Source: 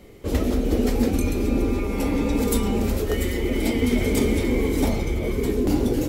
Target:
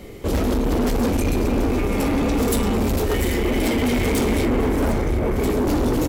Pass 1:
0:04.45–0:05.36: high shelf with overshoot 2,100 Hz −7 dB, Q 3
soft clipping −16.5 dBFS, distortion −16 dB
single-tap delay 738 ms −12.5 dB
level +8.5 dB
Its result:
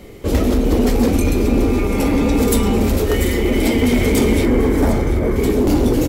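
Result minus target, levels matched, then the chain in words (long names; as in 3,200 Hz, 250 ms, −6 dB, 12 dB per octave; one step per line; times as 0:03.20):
soft clipping: distortion −8 dB
0:04.45–0:05.36: high shelf with overshoot 2,100 Hz −7 dB, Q 3
soft clipping −25.5 dBFS, distortion −8 dB
single-tap delay 738 ms −12.5 dB
level +8.5 dB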